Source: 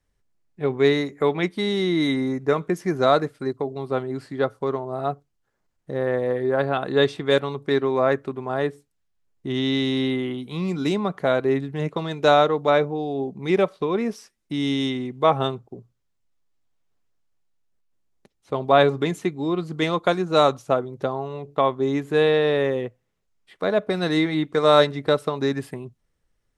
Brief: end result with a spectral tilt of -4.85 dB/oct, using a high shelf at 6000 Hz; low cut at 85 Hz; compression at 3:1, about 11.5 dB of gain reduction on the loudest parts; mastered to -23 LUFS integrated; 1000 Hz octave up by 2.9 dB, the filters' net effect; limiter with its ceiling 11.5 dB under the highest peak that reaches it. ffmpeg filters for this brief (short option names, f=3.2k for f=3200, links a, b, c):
-af "highpass=85,equalizer=f=1k:t=o:g=4,highshelf=f=6k:g=3.5,acompressor=threshold=-25dB:ratio=3,volume=9dB,alimiter=limit=-12.5dB:level=0:latency=1"